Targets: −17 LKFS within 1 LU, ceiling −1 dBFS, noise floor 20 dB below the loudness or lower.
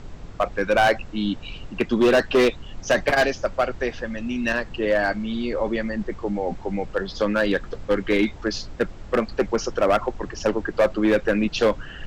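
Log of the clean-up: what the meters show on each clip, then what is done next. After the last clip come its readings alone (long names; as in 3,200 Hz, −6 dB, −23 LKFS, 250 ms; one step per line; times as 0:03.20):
share of clipped samples 1.3%; peaks flattened at −12.5 dBFS; background noise floor −40 dBFS; target noise floor −43 dBFS; integrated loudness −23.0 LKFS; sample peak −12.5 dBFS; target loudness −17.0 LKFS
→ clipped peaks rebuilt −12.5 dBFS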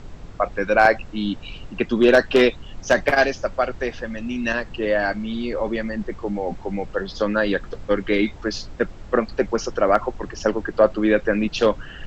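share of clipped samples 0.0%; background noise floor −40 dBFS; target noise floor −42 dBFS
→ noise reduction from a noise print 6 dB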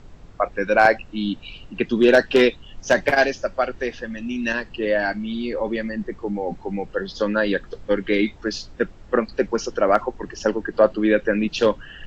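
background noise floor −44 dBFS; integrated loudness −22.0 LKFS; sample peak −3.0 dBFS; target loudness −17.0 LKFS
→ level +5 dB
brickwall limiter −1 dBFS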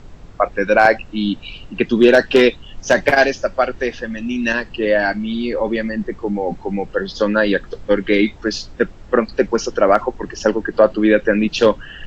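integrated loudness −17.5 LKFS; sample peak −1.0 dBFS; background noise floor −39 dBFS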